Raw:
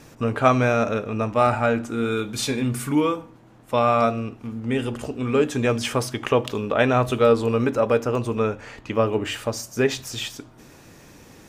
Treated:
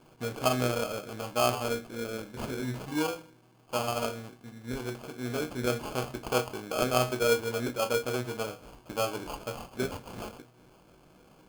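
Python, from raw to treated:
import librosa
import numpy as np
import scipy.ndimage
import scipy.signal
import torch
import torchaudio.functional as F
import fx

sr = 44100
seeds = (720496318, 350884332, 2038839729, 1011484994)

y = fx.low_shelf(x, sr, hz=84.0, db=-11.5)
y = fx.resonator_bank(y, sr, root=47, chord='major', decay_s=0.21)
y = fx.sample_hold(y, sr, seeds[0], rate_hz=1900.0, jitter_pct=0)
y = y * librosa.db_to_amplitude(3.0)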